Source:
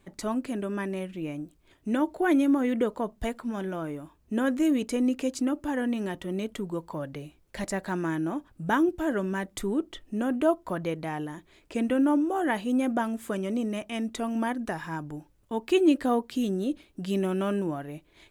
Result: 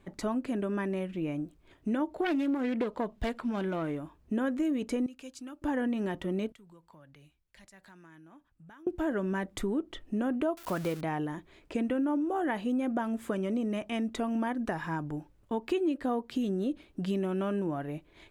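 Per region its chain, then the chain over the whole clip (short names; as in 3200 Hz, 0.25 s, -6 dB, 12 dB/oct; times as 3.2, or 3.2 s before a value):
2.18–3.99 self-modulated delay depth 0.2 ms + bell 3300 Hz +5.5 dB 1.6 oct
5.06–5.62 passive tone stack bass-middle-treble 5-5-5 + notch 2000 Hz, Q 7.6
6.52–8.87 passive tone stack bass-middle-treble 5-5-5 + compressor, threshold -52 dBFS + three-band expander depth 40%
10.57–11.01 switching spikes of -26 dBFS + bell 1400 Hz +5.5 dB 0.21 oct + mismatched tape noise reduction encoder only
whole clip: high shelf 4200 Hz -9.5 dB; compressor 4:1, threshold -30 dBFS; gain +2 dB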